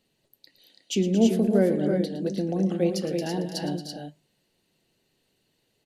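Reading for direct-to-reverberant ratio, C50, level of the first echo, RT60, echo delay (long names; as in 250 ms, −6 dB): no reverb audible, no reverb audible, −13.5 dB, no reverb audible, 112 ms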